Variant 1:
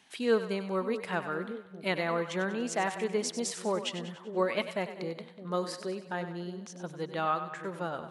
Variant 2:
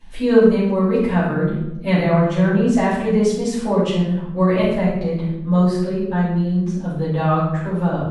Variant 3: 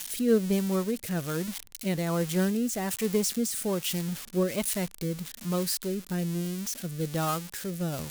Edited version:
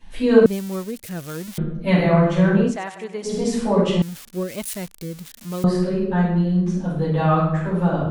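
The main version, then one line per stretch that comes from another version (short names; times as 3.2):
2
0.46–1.58 from 3
2.7–3.31 from 1, crossfade 0.16 s
4.02–5.64 from 3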